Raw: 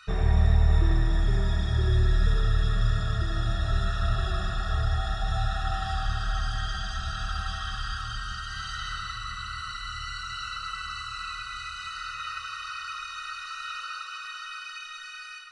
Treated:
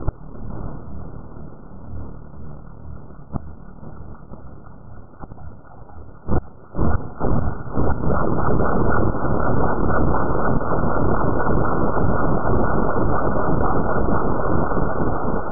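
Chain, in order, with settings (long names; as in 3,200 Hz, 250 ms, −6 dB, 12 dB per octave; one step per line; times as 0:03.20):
rippled gain that drifts along the octave scale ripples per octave 0.56, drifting −2 Hz, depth 20 dB
parametric band 170 Hz +9 dB 0.43 octaves
gate with flip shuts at −17 dBFS, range −33 dB
sample-and-hold swept by an LFO 36×, swing 160% 4 Hz
feedback delay with all-pass diffusion 575 ms, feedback 52%, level −9 dB
full-wave rectification
linear-phase brick-wall low-pass 1,500 Hz
boost into a limiter +25 dB
level −5.5 dB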